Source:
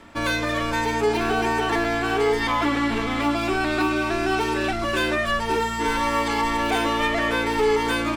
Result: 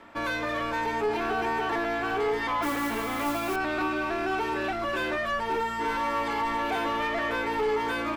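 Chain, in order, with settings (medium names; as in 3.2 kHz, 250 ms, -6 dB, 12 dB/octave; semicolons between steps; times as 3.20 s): peaking EQ 13 kHz +14 dB 0.31 oct; overdrive pedal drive 15 dB, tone 1.3 kHz, clips at -10.5 dBFS; 2.62–3.56 s: modulation noise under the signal 14 dB; trim -7.5 dB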